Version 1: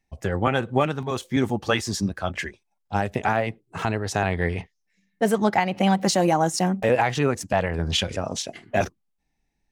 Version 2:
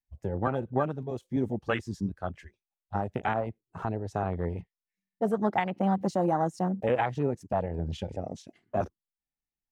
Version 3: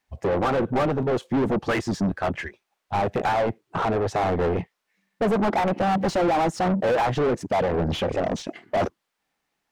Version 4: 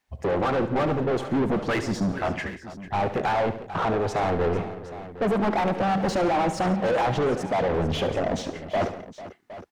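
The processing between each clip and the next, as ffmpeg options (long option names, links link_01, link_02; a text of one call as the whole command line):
ffmpeg -i in.wav -af "afwtdn=0.0562,volume=-6dB" out.wav
ffmpeg -i in.wav -filter_complex "[0:a]asplit=2[link_01][link_02];[link_02]highpass=frequency=720:poles=1,volume=34dB,asoftclip=type=tanh:threshold=-14dB[link_03];[link_01][link_03]amix=inputs=2:normalize=0,lowpass=frequency=1300:poles=1,volume=-6dB" out.wav
ffmpeg -i in.wav -filter_complex "[0:a]asoftclip=type=tanh:threshold=-18dB,asplit=2[link_01][link_02];[link_02]aecho=0:1:71|134|172|446|764:0.251|0.119|0.106|0.168|0.168[link_03];[link_01][link_03]amix=inputs=2:normalize=0" out.wav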